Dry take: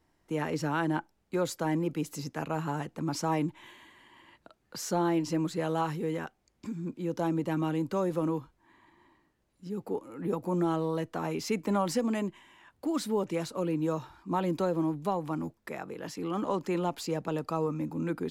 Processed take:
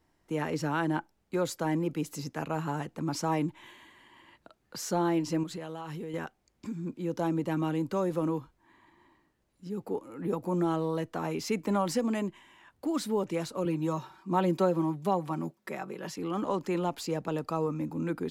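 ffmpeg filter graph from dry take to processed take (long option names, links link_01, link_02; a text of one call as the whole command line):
ffmpeg -i in.wav -filter_complex "[0:a]asettb=1/sr,asplit=3[link_01][link_02][link_03];[link_01]atrim=end=5.434[link_04];[link_02]atrim=start=5.43:end=6.14,asetpts=PTS-STARTPTS,afade=type=in:duration=0.004:curve=qsin,afade=type=out:start_time=0.706:duration=0.004:curve=qsin,equalizer=frequency=3100:width_type=o:width=0.33:gain=4.5,acompressor=threshold=-34dB:ratio=12:attack=3.2:release=140:knee=1:detection=peak[link_05];[link_03]atrim=start=6.136[link_06];[link_04][link_05]acrossfade=duration=0.004:curve1=hsin:curve2=qsin[link_07];[link_07][link_06]acrossfade=duration=0.004:curve1=qsin:curve2=hsin,asettb=1/sr,asplit=3[link_08][link_09][link_10];[link_08]atrim=end=13.654[link_11];[link_09]atrim=start=13.65:end=16.16,asetpts=PTS-STARTPTS,afade=type=in:duration=0.004:curve=qsin,afade=type=out:start_time=2.506:duration=0.004:curve=qsin,highpass=130,aecho=1:1:5.3:0.6,atrim=end_sample=110691[link_12];[link_10]atrim=start=16.156[link_13];[link_11][link_12]acrossfade=duration=0.004:curve1=hsin:curve2=qsin[link_14];[link_14][link_13]acrossfade=duration=0.004:curve1=qsin:curve2=hsin" out.wav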